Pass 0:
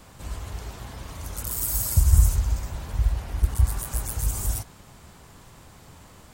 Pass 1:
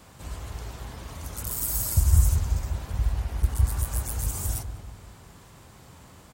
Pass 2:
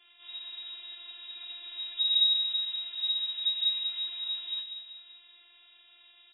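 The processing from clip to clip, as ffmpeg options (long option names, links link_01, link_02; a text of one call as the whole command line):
ffmpeg -i in.wav -filter_complex "[0:a]highpass=42,asplit=2[link_01][link_02];[link_02]adelay=192,lowpass=frequency=840:poles=1,volume=-7dB,asplit=2[link_03][link_04];[link_04]adelay=192,lowpass=frequency=840:poles=1,volume=0.5,asplit=2[link_05][link_06];[link_06]adelay=192,lowpass=frequency=840:poles=1,volume=0.5,asplit=2[link_07][link_08];[link_08]adelay=192,lowpass=frequency=840:poles=1,volume=0.5,asplit=2[link_09][link_10];[link_10]adelay=192,lowpass=frequency=840:poles=1,volume=0.5,asplit=2[link_11][link_12];[link_12]adelay=192,lowpass=frequency=840:poles=1,volume=0.5[link_13];[link_01][link_03][link_05][link_07][link_09][link_11][link_13]amix=inputs=7:normalize=0,volume=-1.5dB" out.wav
ffmpeg -i in.wav -af "afftfilt=real='hypot(re,im)*cos(PI*b)':imag='0':win_size=512:overlap=0.75,lowpass=frequency=3200:width_type=q:width=0.5098,lowpass=frequency=3200:width_type=q:width=0.6013,lowpass=frequency=3200:width_type=q:width=0.9,lowpass=frequency=3200:width_type=q:width=2.563,afreqshift=-3800,volume=-4dB" out.wav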